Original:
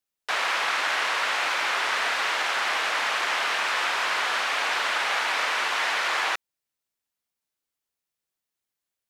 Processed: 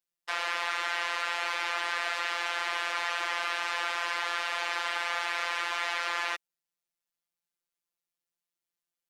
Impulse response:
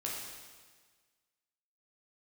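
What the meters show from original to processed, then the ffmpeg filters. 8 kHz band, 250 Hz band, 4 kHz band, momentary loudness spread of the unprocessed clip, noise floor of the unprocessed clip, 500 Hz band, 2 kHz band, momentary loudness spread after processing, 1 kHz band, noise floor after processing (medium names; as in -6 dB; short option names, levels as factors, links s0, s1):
-8.0 dB, -6.0 dB, -6.5 dB, 1 LU, under -85 dBFS, -6.0 dB, -6.0 dB, 1 LU, -6.0 dB, under -85 dBFS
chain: -af "afftfilt=real='hypot(re,im)*cos(PI*b)':imag='0':win_size=1024:overlap=0.75,acontrast=60,volume=0.376"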